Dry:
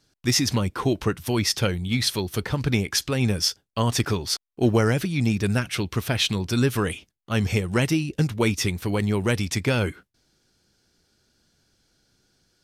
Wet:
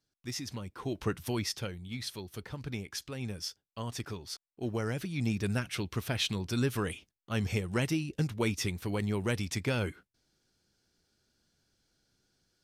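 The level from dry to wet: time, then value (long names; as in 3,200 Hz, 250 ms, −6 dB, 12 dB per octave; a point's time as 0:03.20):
0:00.73 −17 dB
0:01.16 −6 dB
0:01.71 −15.5 dB
0:04.63 −15.5 dB
0:05.29 −8.5 dB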